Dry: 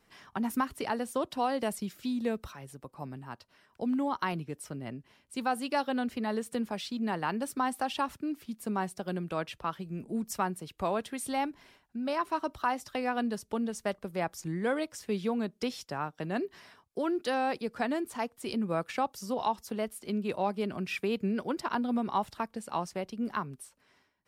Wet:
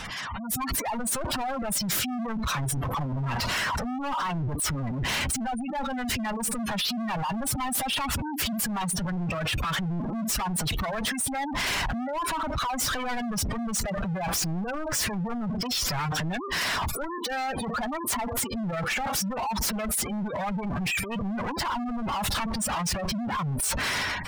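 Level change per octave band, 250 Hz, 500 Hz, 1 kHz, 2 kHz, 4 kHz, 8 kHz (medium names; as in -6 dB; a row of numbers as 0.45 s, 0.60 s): +2.0 dB, -1.5 dB, +3.0 dB, +8.5 dB, +13.0 dB, +16.5 dB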